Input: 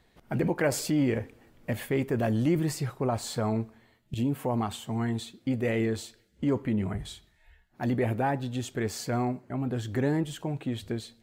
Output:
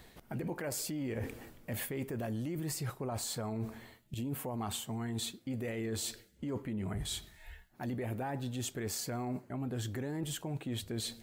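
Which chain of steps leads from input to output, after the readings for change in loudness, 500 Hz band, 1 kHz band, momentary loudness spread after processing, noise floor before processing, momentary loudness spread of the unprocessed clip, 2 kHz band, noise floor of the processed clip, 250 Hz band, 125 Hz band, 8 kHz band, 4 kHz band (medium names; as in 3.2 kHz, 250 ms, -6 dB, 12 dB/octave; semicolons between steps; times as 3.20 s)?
-8.5 dB, -10.5 dB, -9.5 dB, 6 LU, -65 dBFS, 9 LU, -9.0 dB, -62 dBFS, -9.5 dB, -8.0 dB, 0.0 dB, -1.0 dB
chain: treble shelf 7.8 kHz +10.5 dB; peak limiter -24.5 dBFS, peak gain reduction 9 dB; reverse; compression 5:1, threshold -44 dBFS, peak gain reduction 14.5 dB; reverse; trim +7.5 dB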